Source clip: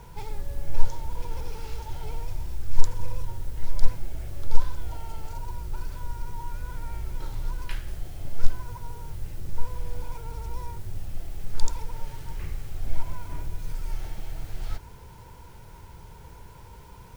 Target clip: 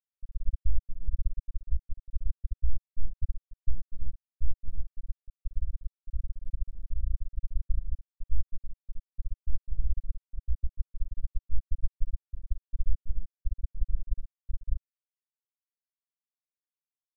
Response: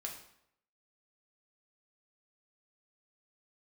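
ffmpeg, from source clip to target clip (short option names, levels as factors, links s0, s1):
-filter_complex "[1:a]atrim=start_sample=2205[s0];[0:a][s0]afir=irnorm=-1:irlink=0,aeval=exprs='val(0)+0.0224*(sin(2*PI*50*n/s)+sin(2*PI*2*50*n/s)/2+sin(2*PI*3*50*n/s)/3+sin(2*PI*4*50*n/s)/4+sin(2*PI*5*50*n/s)/5)':c=same,aecho=1:1:17|69:0.531|0.531,acompressor=threshold=0.0708:ratio=10,aeval=exprs='max(val(0),0)':c=same,afftfilt=real='re*gte(hypot(re,im),0.447)':imag='im*gte(hypot(re,im),0.447)':win_size=1024:overlap=0.75,volume=2.66"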